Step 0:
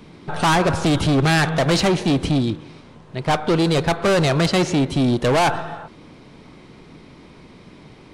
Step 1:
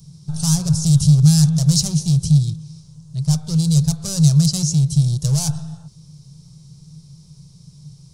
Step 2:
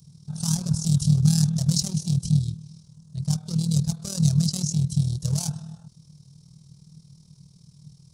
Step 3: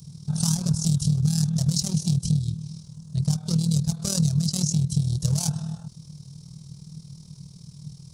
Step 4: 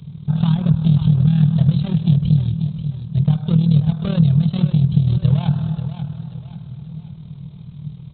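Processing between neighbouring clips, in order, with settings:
EQ curve 100 Hz 0 dB, 150 Hz +13 dB, 260 Hz -27 dB, 430 Hz -19 dB, 910 Hz -20 dB, 1300 Hz -21 dB, 2000 Hz -27 dB, 3200 Hz -13 dB, 5500 Hz +11 dB; gain -1 dB
HPF 43 Hz; AM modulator 39 Hz, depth 55%; gain -4 dB
compressor 5:1, threshold -27 dBFS, peak gain reduction 12.5 dB; gain +7.5 dB
downsampling 8000 Hz; warbling echo 0.536 s, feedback 39%, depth 55 cents, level -10 dB; gain +8 dB

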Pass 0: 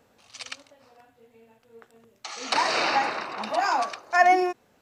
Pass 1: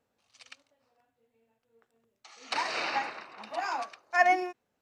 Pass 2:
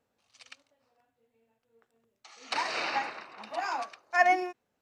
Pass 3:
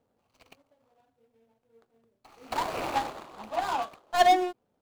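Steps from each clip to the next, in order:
dynamic EQ 2300 Hz, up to +4 dB, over -41 dBFS, Q 1.1; upward expander 1.5:1, over -36 dBFS; gain -5 dB
nothing audible
median filter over 25 samples; gain +6 dB

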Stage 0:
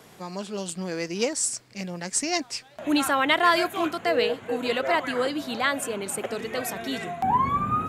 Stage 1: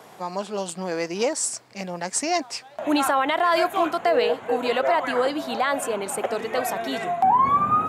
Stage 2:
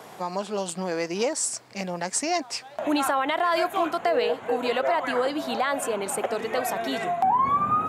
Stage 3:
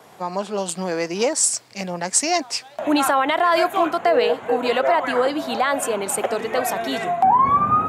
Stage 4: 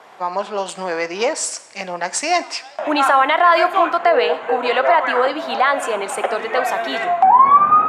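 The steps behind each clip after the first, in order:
HPF 130 Hz 6 dB/oct; bell 810 Hz +9.5 dB 1.5 oct; limiter -11.5 dBFS, peak gain reduction 9 dB
compressor 1.5:1, threshold -32 dBFS, peak gain reduction 6 dB; gain +2.5 dB
three-band expander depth 40%; gain +5.5 dB
band-pass 1400 Hz, Q 0.59; reverb, pre-delay 3 ms, DRR 13.5 dB; gain +6 dB

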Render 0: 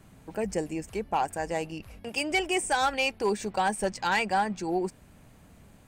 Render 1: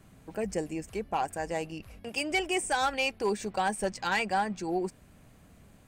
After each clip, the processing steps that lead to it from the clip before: notch 890 Hz, Q 14; gain -2 dB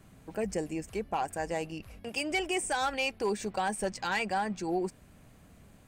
limiter -22 dBFS, peak gain reduction 3.5 dB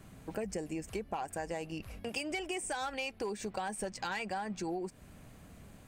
compressor, threshold -37 dBFS, peak gain reduction 10.5 dB; gain +2.5 dB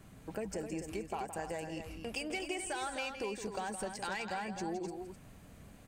loudspeakers at several distances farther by 57 m -10 dB, 88 m -8 dB; gain -2 dB

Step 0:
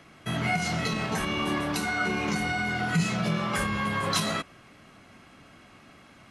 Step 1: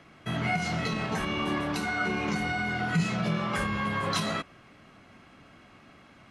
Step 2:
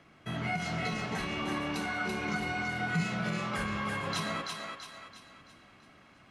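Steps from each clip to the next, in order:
high shelf 7000 Hz -10.5 dB; gain -1 dB
thinning echo 0.334 s, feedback 45%, high-pass 540 Hz, level -3.5 dB; gain -5 dB

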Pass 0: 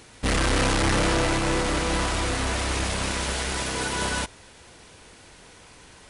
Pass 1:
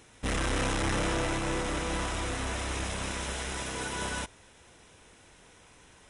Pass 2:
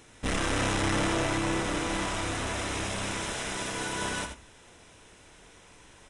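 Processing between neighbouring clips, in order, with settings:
notch 4500 Hz, Q 5.4; gain -7 dB
echo 82 ms -8 dB; on a send at -12.5 dB: reverb RT60 0.45 s, pre-delay 3 ms; on the sum: downsampling 22050 Hz; gain +1.5 dB

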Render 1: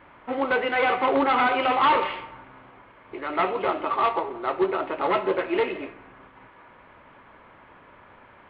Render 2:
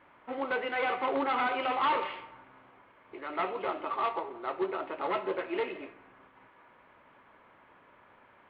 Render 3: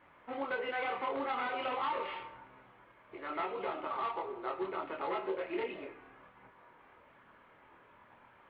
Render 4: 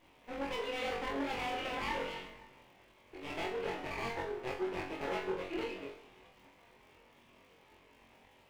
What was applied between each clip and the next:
low shelf 110 Hz -9 dB; gain -8 dB
chorus voices 4, 0.6 Hz, delay 25 ms, depth 1.3 ms; compressor 4:1, threshold -34 dBFS, peak gain reduction 8.5 dB; gain +1.5 dB
minimum comb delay 0.35 ms; crackle 160/s -58 dBFS; flutter echo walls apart 3.7 m, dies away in 0.35 s; gain -2 dB

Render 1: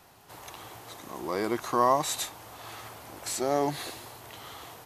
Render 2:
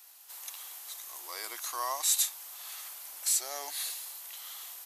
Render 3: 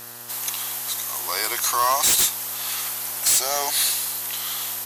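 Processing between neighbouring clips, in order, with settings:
HPF 490 Hz 12 dB/oct; differentiator; gain +6.5 dB
sine folder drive 12 dB, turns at -13.5 dBFS; buzz 120 Hz, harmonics 16, -47 dBFS -1 dB/oct

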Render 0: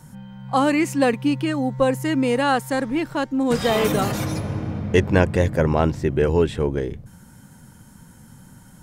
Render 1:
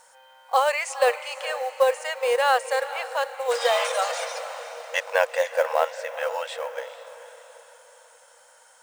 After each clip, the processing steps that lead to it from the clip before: diffused feedback echo 0.457 s, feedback 47%, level -13 dB; FFT band-pass 470–9900 Hz; companded quantiser 6-bit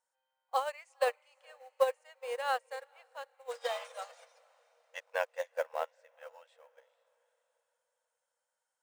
upward expander 2.5:1, over -32 dBFS; gain -6.5 dB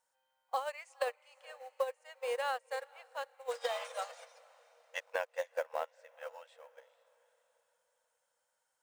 compressor 6:1, threshold -36 dBFS, peak gain reduction 14 dB; gain +4.5 dB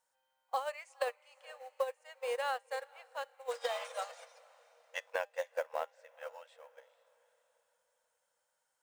resonator 200 Hz, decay 0.24 s, harmonics all, mix 30%; gain +2.5 dB

